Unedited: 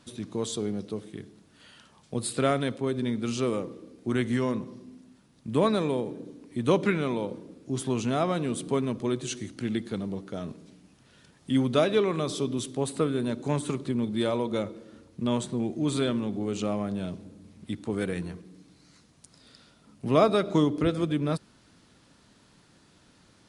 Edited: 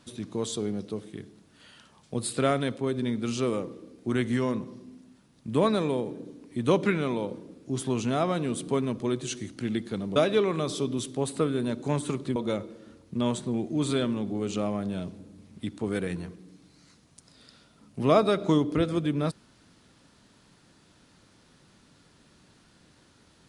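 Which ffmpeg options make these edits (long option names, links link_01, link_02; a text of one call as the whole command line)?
ffmpeg -i in.wav -filter_complex "[0:a]asplit=3[link_01][link_02][link_03];[link_01]atrim=end=10.162[link_04];[link_02]atrim=start=11.758:end=13.962[link_05];[link_03]atrim=start=14.418[link_06];[link_04][link_05]acrossfade=duration=0.004:curve1=hsin:curve2=hsin[link_07];[link_07][link_06]acrossfade=duration=0.004:curve1=hsin:curve2=hsin" out.wav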